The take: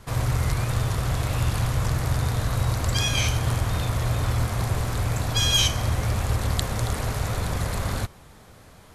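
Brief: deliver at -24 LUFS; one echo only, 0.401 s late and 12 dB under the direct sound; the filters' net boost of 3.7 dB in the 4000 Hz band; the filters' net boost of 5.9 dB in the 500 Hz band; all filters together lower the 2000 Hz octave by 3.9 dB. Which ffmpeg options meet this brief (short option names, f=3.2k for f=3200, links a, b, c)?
-af "equalizer=f=500:t=o:g=7.5,equalizer=f=2k:t=o:g=-8,equalizer=f=4k:t=o:g=8,aecho=1:1:401:0.251,volume=-1dB"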